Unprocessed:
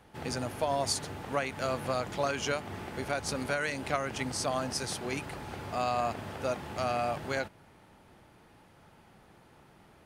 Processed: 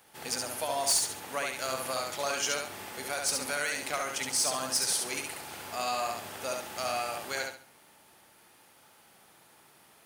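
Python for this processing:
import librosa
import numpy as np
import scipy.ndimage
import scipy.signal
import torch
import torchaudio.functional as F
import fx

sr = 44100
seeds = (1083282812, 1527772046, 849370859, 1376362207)

y = fx.riaa(x, sr, side='recording')
y = np.clip(y, -10.0 ** (-19.0 / 20.0), 10.0 ** (-19.0 / 20.0))
y = fx.echo_feedback(y, sr, ms=69, feedback_pct=30, wet_db=-3.5)
y = y * librosa.db_to_amplitude(-2.5)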